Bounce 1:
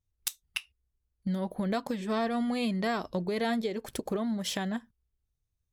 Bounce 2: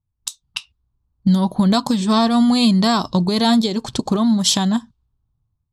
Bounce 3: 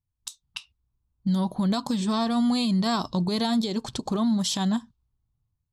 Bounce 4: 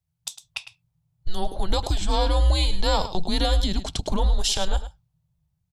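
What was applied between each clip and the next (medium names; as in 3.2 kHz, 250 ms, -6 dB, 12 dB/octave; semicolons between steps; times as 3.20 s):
level-controlled noise filter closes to 1.1 kHz, open at -29 dBFS; graphic EQ 125/250/500/1000/2000/4000/8000 Hz +10/+5/-7/+10/-10/+11/+10 dB; level rider gain up to 10 dB
peak limiter -11.5 dBFS, peak gain reduction 7.5 dB; trim -6 dB
delay 105 ms -12.5 dB; frequency shift -180 Hz; trim +4 dB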